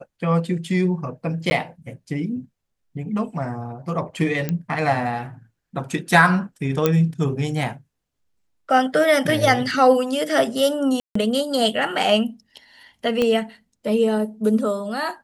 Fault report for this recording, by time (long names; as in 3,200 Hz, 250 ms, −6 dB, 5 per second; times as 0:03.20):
0:01.50–0:01.51: drop-out 10 ms
0:04.49: click −11 dBFS
0:06.86: click −4 dBFS
0:11.00–0:11.15: drop-out 154 ms
0:13.22: click −9 dBFS